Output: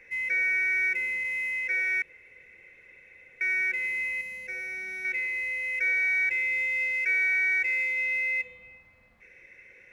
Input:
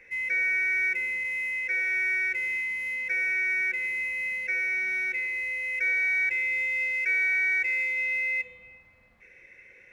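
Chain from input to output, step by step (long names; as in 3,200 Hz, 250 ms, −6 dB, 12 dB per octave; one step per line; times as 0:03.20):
0:02.02–0:03.41: fill with room tone
0:04.21–0:05.05: parametric band 2,000 Hz −8 dB 2 octaves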